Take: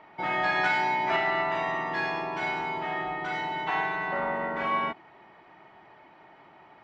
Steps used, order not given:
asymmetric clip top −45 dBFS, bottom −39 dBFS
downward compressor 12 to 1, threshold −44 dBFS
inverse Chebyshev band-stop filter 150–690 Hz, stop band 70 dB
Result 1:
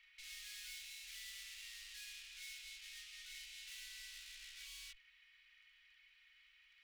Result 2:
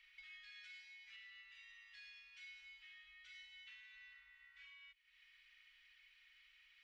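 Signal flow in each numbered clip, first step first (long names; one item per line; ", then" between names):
asymmetric clip, then downward compressor, then inverse Chebyshev band-stop filter
downward compressor, then inverse Chebyshev band-stop filter, then asymmetric clip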